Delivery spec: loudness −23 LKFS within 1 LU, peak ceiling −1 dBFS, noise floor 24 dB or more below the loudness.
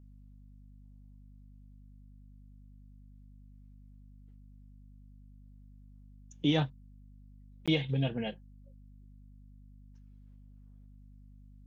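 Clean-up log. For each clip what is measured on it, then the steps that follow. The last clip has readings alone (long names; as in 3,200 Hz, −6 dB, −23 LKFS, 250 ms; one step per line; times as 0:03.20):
number of dropouts 1; longest dropout 16 ms; mains hum 50 Hz; hum harmonics up to 250 Hz; level of the hum −52 dBFS; integrated loudness −32.0 LKFS; sample peak −16.0 dBFS; target loudness −23.0 LKFS
→ repair the gap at 0:07.66, 16 ms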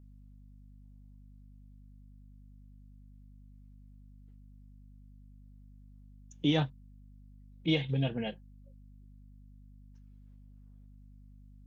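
number of dropouts 0; mains hum 50 Hz; hum harmonics up to 250 Hz; level of the hum −52 dBFS
→ mains-hum notches 50/100/150/200/250 Hz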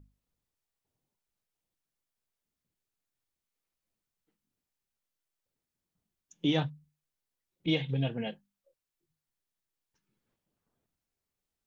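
mains hum none found; integrated loudness −32.5 LKFS; sample peak −16.5 dBFS; target loudness −23.0 LKFS
→ level +9.5 dB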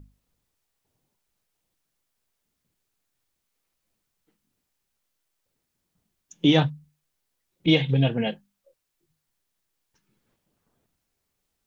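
integrated loudness −23.0 LKFS; sample peak −7.0 dBFS; background noise floor −80 dBFS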